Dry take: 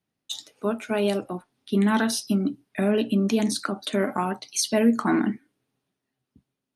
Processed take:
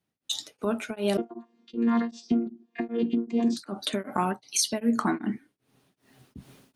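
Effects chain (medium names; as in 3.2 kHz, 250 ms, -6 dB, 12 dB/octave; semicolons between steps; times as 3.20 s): 1.17–3.57 s: vocoder on a held chord bare fifth, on A#3; recorder AGC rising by 28 dB/s; tremolo of two beating tones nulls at 2.6 Hz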